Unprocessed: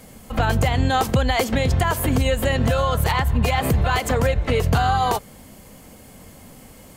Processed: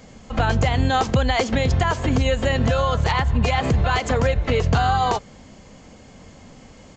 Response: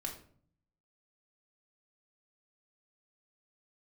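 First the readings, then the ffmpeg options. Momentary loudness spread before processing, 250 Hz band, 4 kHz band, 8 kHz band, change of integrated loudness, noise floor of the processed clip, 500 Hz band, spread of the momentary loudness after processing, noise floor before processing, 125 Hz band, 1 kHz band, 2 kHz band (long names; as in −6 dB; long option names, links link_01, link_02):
2 LU, 0.0 dB, 0.0 dB, −4.0 dB, 0.0 dB, −46 dBFS, 0.0 dB, 2 LU, −45 dBFS, 0.0 dB, 0.0 dB, 0.0 dB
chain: -af "aresample=16000,aresample=44100"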